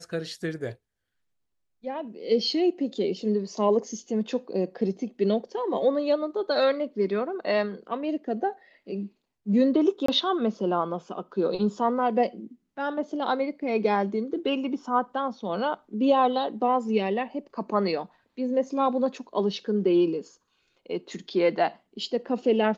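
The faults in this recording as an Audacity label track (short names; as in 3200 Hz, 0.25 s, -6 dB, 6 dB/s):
10.060000	10.080000	gap 24 ms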